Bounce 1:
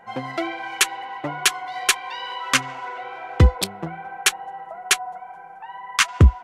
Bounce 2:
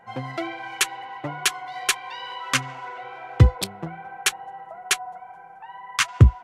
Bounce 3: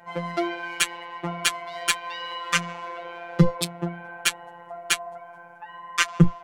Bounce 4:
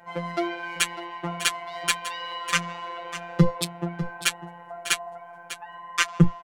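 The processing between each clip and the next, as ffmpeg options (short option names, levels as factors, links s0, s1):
-af "equalizer=f=120:t=o:w=0.41:g=10.5,volume=0.668"
-af "afftfilt=real='hypot(re,im)*cos(PI*b)':imag='0':win_size=1024:overlap=0.75,acontrast=63,volume=0.891"
-af "aecho=1:1:599:0.237,volume=0.891"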